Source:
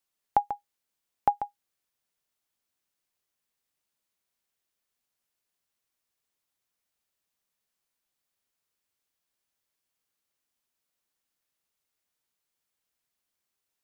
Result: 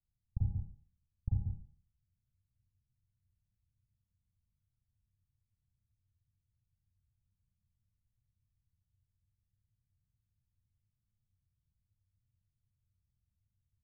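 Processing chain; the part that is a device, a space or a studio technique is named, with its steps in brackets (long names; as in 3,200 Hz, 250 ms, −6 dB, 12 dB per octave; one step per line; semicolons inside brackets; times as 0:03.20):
club heard from the street (brickwall limiter −15.5 dBFS, peak gain reduction 5 dB; low-pass filter 120 Hz 24 dB per octave; convolution reverb RT60 0.50 s, pre-delay 35 ms, DRR −5.5 dB)
level +18 dB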